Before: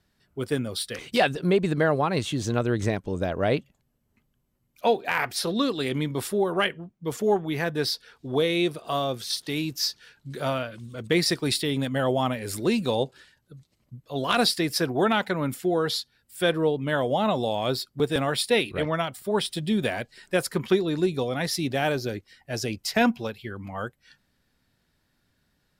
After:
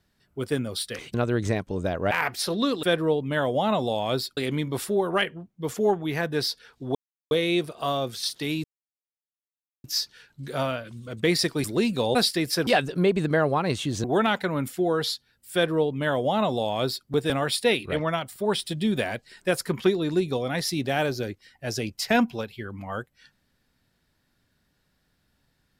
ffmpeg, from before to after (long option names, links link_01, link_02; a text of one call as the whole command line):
ffmpeg -i in.wav -filter_complex "[0:a]asplit=11[link_01][link_02][link_03][link_04][link_05][link_06][link_07][link_08][link_09][link_10][link_11];[link_01]atrim=end=1.142[link_12];[link_02]atrim=start=2.508:end=3.482[link_13];[link_03]atrim=start=5.078:end=5.802[link_14];[link_04]atrim=start=16.388:end=17.932[link_15];[link_05]atrim=start=5.798:end=8.38,asetpts=PTS-STARTPTS,afade=type=out:start_time=2.578:duration=0.004:curve=hsin,apad=pad_dur=0.36[link_16];[link_06]atrim=start=8.38:end=9.71,asetpts=PTS-STARTPTS,afade=type=in:duration=0.004:curve=hsin,afade=type=out:start_time=1.326:duration=0.004:curve=hsin,apad=pad_dur=1.2[link_17];[link_07]atrim=start=9.71:end=11.512,asetpts=PTS-STARTPTS,afade=type=in:duration=0.004:curve=hsin[link_18];[link_08]atrim=start=12.528:end=13.042[link_19];[link_09]atrim=start=14.378:end=14.902[link_20];[link_10]atrim=start=1.138:end=2.512[link_21];[link_11]atrim=start=14.898[link_22];[link_12][link_13]acrossfade=duration=0.004:curve1=hsin:curve2=hsin[link_23];[link_23][link_14]acrossfade=duration=0.004:curve1=hsin:curve2=hsin[link_24];[link_24][link_15]acrossfade=duration=0.004:curve1=hsin:curve2=hsin[link_25];[link_16][link_17][link_18]concat=n=3:v=0:a=1[link_26];[link_25][link_26]acrossfade=duration=0.004:curve1=hsin:curve2=hsin[link_27];[link_27][link_19]acrossfade=duration=0.004:curve1=hsin:curve2=hsin[link_28];[link_28][link_20]acrossfade=duration=0.004:curve1=hsin:curve2=hsin[link_29];[link_29][link_21]acrossfade=duration=0.004:curve1=hsin:curve2=hsin[link_30];[link_30][link_22]acrossfade=duration=0.004:curve1=hsin:curve2=hsin" out.wav